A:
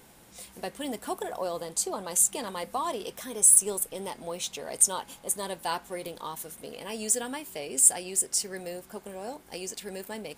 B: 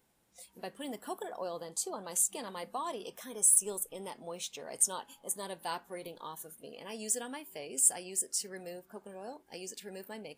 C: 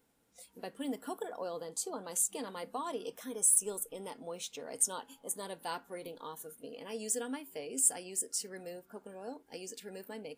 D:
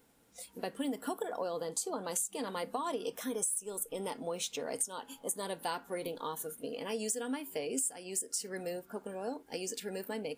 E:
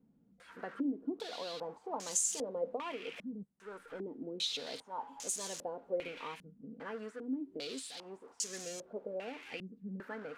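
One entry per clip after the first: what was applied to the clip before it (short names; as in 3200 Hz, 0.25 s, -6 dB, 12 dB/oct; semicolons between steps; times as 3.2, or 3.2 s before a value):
spectral noise reduction 12 dB; gain -6.5 dB
small resonant body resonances 270/460/1400 Hz, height 10 dB, ringing for 90 ms; gain -2 dB
compressor 10:1, threshold -38 dBFS, peak gain reduction 16 dB; gain +6.5 dB
switching spikes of -26.5 dBFS; stepped low-pass 2.5 Hz 200–6600 Hz; gain -7 dB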